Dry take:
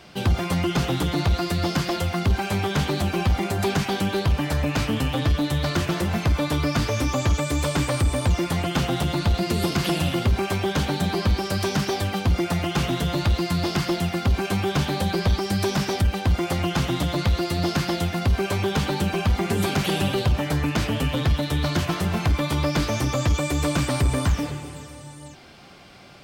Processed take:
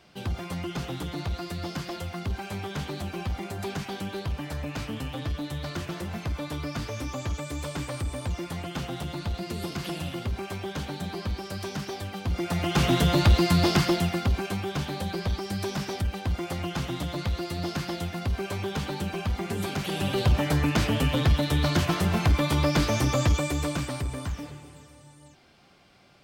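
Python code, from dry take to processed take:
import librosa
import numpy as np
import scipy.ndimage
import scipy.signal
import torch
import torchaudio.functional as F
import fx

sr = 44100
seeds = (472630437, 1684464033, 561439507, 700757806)

y = fx.gain(x, sr, db=fx.line((12.17, -10.0), (12.92, 2.5), (13.71, 2.5), (14.63, -7.5), (19.89, -7.5), (20.3, -0.5), (23.23, -0.5), (24.12, -11.0)))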